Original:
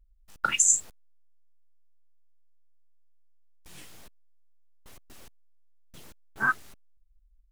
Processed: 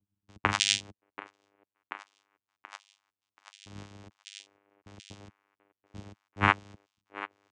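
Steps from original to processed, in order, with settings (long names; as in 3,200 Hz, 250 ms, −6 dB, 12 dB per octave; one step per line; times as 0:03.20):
echo through a band-pass that steps 732 ms, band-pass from 910 Hz, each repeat 0.7 octaves, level −9.5 dB
channel vocoder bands 4, saw 100 Hz
level −1 dB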